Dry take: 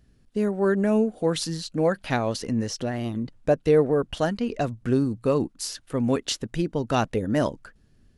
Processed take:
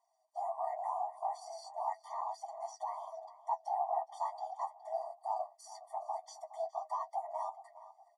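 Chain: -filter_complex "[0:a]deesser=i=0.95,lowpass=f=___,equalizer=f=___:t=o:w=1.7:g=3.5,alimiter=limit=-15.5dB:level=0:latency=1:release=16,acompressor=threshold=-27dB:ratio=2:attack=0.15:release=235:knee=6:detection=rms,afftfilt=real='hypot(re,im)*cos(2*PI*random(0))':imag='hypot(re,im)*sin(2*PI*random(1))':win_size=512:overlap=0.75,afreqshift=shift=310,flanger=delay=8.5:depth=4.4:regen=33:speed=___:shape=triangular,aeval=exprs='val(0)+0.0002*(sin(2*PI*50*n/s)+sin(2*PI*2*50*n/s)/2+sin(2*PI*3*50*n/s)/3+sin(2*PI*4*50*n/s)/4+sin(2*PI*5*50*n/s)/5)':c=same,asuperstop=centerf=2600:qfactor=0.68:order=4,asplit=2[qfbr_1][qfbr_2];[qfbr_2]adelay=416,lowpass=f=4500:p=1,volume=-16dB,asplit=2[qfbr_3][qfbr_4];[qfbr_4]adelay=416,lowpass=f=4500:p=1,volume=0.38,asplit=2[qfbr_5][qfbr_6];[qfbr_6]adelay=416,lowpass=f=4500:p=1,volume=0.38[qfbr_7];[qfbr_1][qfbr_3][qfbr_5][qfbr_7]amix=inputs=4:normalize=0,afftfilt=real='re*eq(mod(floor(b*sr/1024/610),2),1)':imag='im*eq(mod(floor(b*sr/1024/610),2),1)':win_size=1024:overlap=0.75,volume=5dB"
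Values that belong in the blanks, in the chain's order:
9800, 1300, 0.39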